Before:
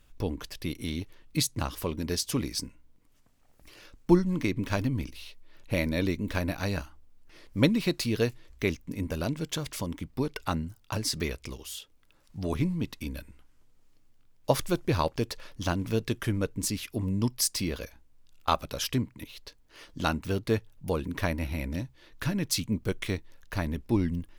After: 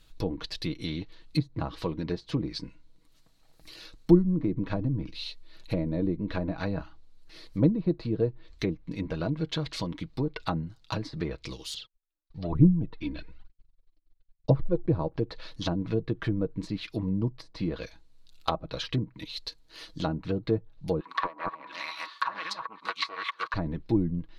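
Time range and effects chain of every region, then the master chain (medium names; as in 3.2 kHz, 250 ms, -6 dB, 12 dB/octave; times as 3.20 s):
11.74–14.86 s: gate -55 dBFS, range -37 dB + phaser 1.1 Hz, delay 3.5 ms, feedback 61% + distance through air 200 m
21.00–23.54 s: chunks repeated in reverse 360 ms, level -0.5 dB + resonant high-pass 1.1 kHz, resonance Q 13 + loudspeaker Doppler distortion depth 0.19 ms
whole clip: low-pass that closes with the level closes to 580 Hz, closed at -24 dBFS; peaking EQ 4.1 kHz +13 dB 0.42 oct; comb 6.2 ms, depth 48%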